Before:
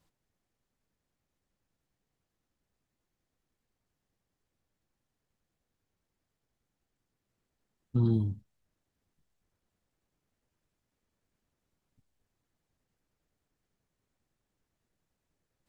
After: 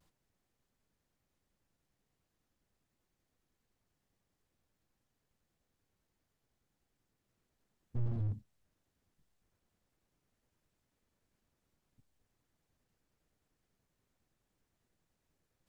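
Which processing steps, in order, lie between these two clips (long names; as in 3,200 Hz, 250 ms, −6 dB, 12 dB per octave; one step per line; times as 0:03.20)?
pitch vibrato 0.76 Hz 41 cents
slew-rate limiting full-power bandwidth 2.3 Hz
level +1 dB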